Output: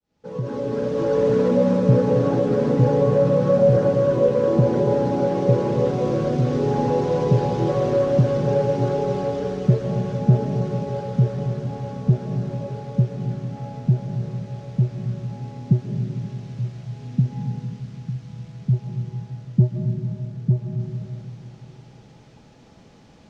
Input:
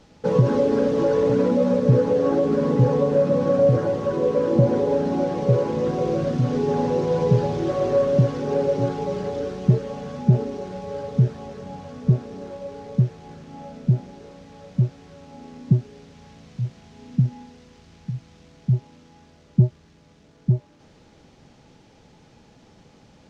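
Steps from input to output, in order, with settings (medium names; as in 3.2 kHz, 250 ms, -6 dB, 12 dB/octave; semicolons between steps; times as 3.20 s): fade-in on the opening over 1.37 s; algorithmic reverb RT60 3.1 s, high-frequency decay 0.45×, pre-delay 95 ms, DRR 4 dB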